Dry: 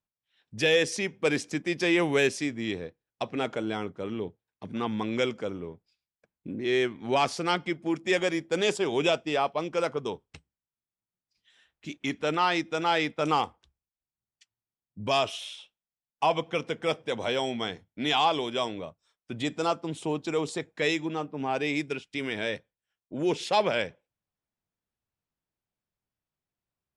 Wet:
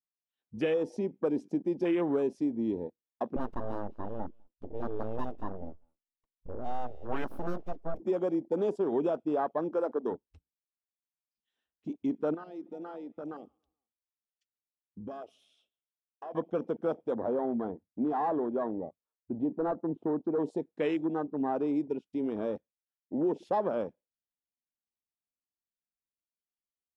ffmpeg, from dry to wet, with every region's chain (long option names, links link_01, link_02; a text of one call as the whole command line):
ffmpeg -i in.wav -filter_complex "[0:a]asettb=1/sr,asplit=3[link_01][link_02][link_03];[link_01]atrim=end=3.364[link_04];[link_02]atrim=start=3.36:end=8,asetpts=PTS-STARTPTS,afade=type=in:duration=0.004:curve=qsin,afade=type=out:start_time=4.636:duration=0.004:curve=qsin,asuperstop=centerf=1900:order=8:qfactor=4.9,aeval=exprs='abs(val(0))':channel_layout=same,aecho=1:1:199:0.106,atrim=end_sample=204624[link_05];[link_03]atrim=start=7.996[link_06];[link_04][link_05]acrossfade=duration=0.004:curve1=hsin:curve2=qsin[link_07];[link_07][link_06]acrossfade=duration=0.004:curve1=qsin:curve2=hsin,asettb=1/sr,asplit=3[link_08][link_09][link_10];[link_08]atrim=end=9.704[link_11];[link_09]atrim=start=9.7:end=10.11,asetpts=PTS-STARTPTS,afade=type=in:duration=0.004:curve=qsin,afade=type=out:start_time=0.406:duration=0.004:curve=qsin,highpass=frequency=210:width=0.5412,highpass=frequency=210:width=1.3066,acompressor=mode=upward:threshold=-42dB:ratio=2.5:attack=3.2:release=140:knee=2.83:detection=peak[link_12];[link_10]atrim=start=10.106[link_13];[link_11][link_12]acrossfade=duration=0.004:curve1=hsin:curve2=qsin[link_14];[link_14][link_13]acrossfade=duration=0.004:curve1=qsin:curve2=hsin,asettb=1/sr,asplit=3[link_15][link_16][link_17];[link_15]atrim=end=12.344[link_18];[link_16]atrim=start=12.34:end=16.35,asetpts=PTS-STARTPTS,afade=type=in:duration=0.004:curve=qsin,afade=type=out:start_time=4.006:duration=0.004:curve=qsin,equalizer=frequency=940:width_type=o:width=0.26:gain=-14.5,acompressor=threshold=-41dB:ratio=3:attack=3.2:release=140:knee=1:detection=peak,asplit=2[link_19][link_20];[link_20]adelay=141,lowpass=frequency=2000:poles=1,volume=-21dB,asplit=2[link_21][link_22];[link_22]adelay=141,lowpass=frequency=2000:poles=1,volume=0.48,asplit=2[link_23][link_24];[link_24]adelay=141,lowpass=frequency=2000:poles=1,volume=0.48[link_25];[link_19][link_21][link_23][link_25]amix=inputs=4:normalize=0,atrim=end_sample=176841[link_26];[link_17]atrim=start=16.346[link_27];[link_18][link_26]acrossfade=duration=0.004:curve1=hsin:curve2=qsin[link_28];[link_28][link_27]acrossfade=duration=0.004:curve1=qsin:curve2=hsin,asettb=1/sr,asplit=3[link_29][link_30][link_31];[link_29]atrim=end=17.144[link_32];[link_30]atrim=start=17.14:end=20.4,asetpts=PTS-STARTPTS,afade=type=in:duration=0.004:curve=qsin,afade=type=out:start_time=3.256:duration=0.004:curve=qsin,lowpass=1300,asoftclip=type=hard:threshold=-24.5dB[link_33];[link_31]atrim=start=20.396[link_34];[link_32][link_33]acrossfade=duration=0.004:curve1=hsin:curve2=qsin[link_35];[link_35][link_34]acrossfade=duration=0.004:curve1=qsin:curve2=hsin,equalizer=frequency=125:width_type=o:width=1:gain=-9,equalizer=frequency=250:width_type=o:width=1:gain=6,equalizer=frequency=2000:width_type=o:width=1:gain=-9,equalizer=frequency=4000:width_type=o:width=1:gain=-5,equalizer=frequency=8000:width_type=o:width=1:gain=-9,acompressor=threshold=-25dB:ratio=6,afwtdn=0.0126" out.wav